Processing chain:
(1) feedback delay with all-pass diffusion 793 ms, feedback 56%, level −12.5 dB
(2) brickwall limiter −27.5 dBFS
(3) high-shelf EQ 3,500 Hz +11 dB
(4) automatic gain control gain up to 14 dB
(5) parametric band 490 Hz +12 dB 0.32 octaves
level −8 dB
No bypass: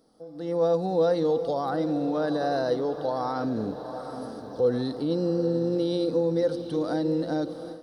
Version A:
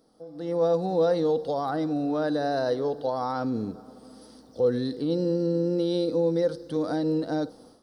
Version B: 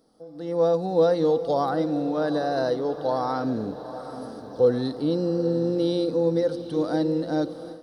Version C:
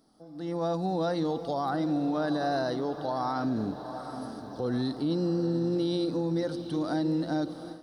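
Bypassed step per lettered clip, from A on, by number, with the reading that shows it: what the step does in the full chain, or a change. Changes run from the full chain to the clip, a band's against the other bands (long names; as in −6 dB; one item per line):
1, change in momentary loudness spread −4 LU
2, change in crest factor +2.5 dB
5, 500 Hz band −6.5 dB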